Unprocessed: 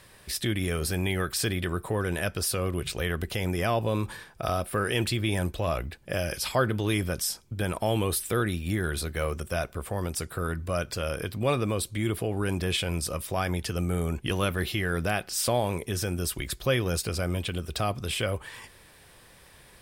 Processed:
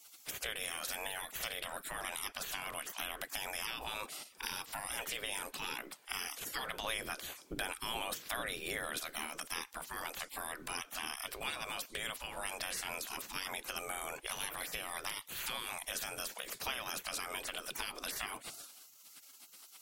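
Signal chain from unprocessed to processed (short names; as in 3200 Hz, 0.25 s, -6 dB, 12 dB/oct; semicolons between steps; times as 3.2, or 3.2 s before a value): 6.84–8.99 low shelf 460 Hz +7.5 dB; spectral gate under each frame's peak -20 dB weak; compressor 3:1, threshold -45 dBFS, peak gain reduction 12 dB; gain +7 dB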